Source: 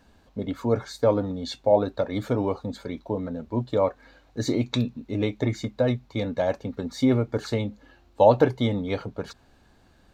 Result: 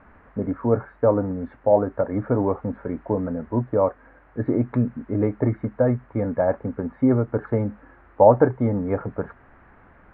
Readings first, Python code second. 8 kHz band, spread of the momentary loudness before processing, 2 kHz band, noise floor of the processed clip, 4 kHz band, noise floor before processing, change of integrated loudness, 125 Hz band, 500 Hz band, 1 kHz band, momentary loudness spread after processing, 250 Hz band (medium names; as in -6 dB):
under -35 dB, 11 LU, -1.5 dB, -53 dBFS, under -30 dB, -59 dBFS, +3.0 dB, +3.0 dB, +3.0 dB, +3.0 dB, 10 LU, +3.0 dB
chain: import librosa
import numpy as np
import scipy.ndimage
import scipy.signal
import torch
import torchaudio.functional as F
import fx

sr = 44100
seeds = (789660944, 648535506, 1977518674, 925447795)

p1 = fx.dmg_noise_colour(x, sr, seeds[0], colour='blue', level_db=-39.0)
p2 = scipy.signal.sosfilt(scipy.signal.butter(6, 1700.0, 'lowpass', fs=sr, output='sos'), p1)
p3 = fx.rider(p2, sr, range_db=4, speed_s=0.5)
p4 = p2 + (p3 * 10.0 ** (-2.5 / 20.0))
y = p4 * 10.0 ** (-2.0 / 20.0)